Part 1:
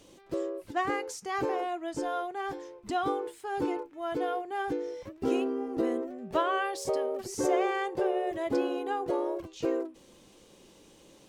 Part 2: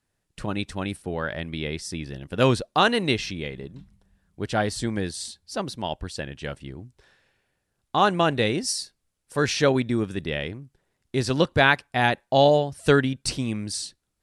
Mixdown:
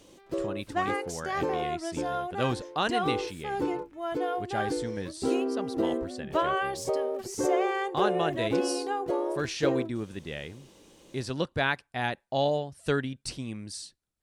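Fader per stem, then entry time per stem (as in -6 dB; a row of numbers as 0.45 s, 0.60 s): +1.0 dB, -9.0 dB; 0.00 s, 0.00 s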